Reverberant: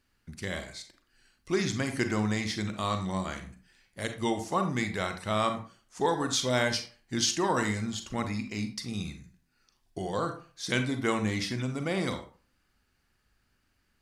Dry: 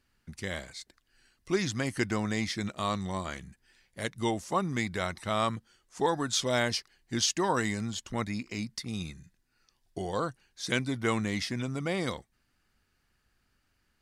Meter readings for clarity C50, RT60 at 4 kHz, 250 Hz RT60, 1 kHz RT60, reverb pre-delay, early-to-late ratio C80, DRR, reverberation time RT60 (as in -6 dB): 9.5 dB, 0.25 s, 0.35 s, 0.40 s, 34 ms, 14.5 dB, 6.5 dB, 0.40 s